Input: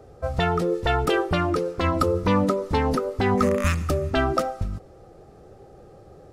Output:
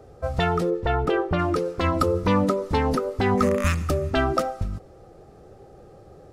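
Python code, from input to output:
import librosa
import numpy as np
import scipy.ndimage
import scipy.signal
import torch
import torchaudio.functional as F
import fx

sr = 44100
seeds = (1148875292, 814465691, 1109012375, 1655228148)

y = fx.lowpass(x, sr, hz=1500.0, slope=6, at=(0.69, 1.38), fade=0.02)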